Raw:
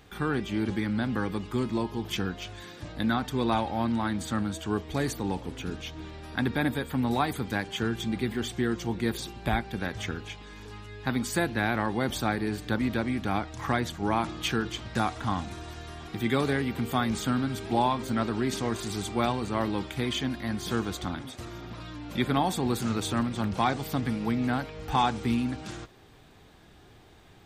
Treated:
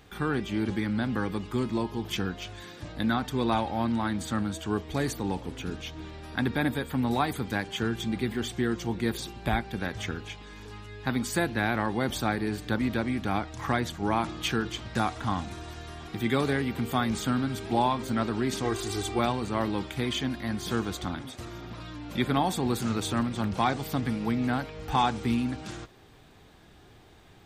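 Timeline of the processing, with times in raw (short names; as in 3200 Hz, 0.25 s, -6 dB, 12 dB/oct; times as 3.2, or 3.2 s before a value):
18.64–19.19 comb 2.6 ms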